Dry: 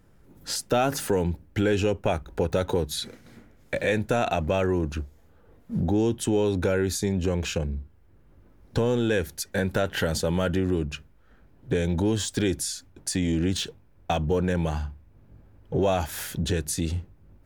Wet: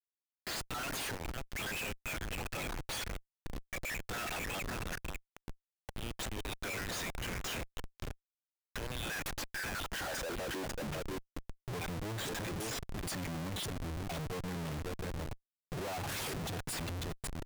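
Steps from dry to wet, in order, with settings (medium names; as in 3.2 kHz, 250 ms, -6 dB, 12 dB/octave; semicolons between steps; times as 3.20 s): random holes in the spectrogram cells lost 31%; level held to a coarse grid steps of 15 dB; high-pass sweep 2 kHz -> 110 Hz, 9.48–11.18 s; on a send: thinning echo 544 ms, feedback 18%, high-pass 760 Hz, level -10 dB; on the sum: Schmitt trigger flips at -45 dBFS; trim -3 dB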